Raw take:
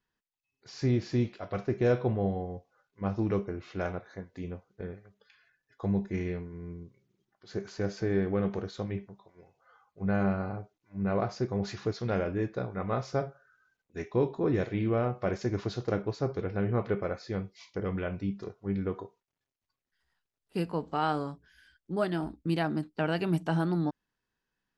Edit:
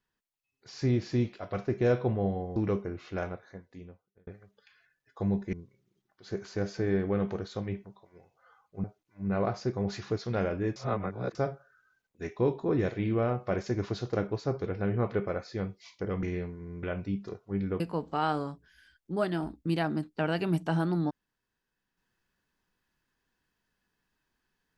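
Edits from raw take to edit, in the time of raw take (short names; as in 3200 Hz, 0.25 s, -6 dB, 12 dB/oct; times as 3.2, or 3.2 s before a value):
2.56–3.19 cut
3.71–4.9 fade out
6.16–6.76 move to 17.98
10.07–10.59 cut
12.51–13.1 reverse
18.95–20.6 cut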